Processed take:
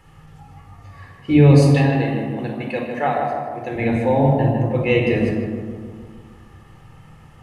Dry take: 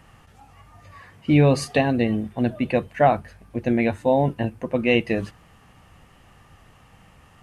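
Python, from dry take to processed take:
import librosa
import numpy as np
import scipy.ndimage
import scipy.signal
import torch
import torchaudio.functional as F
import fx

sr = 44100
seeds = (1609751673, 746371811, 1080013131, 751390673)

y = fx.highpass(x, sr, hz=610.0, slope=6, at=(1.62, 3.76))
y = fx.echo_filtered(y, sr, ms=154, feedback_pct=62, hz=1800.0, wet_db=-3.5)
y = fx.room_shoebox(y, sr, seeds[0], volume_m3=2400.0, walls='furnished', distance_m=4.1)
y = F.gain(torch.from_numpy(y), -2.5).numpy()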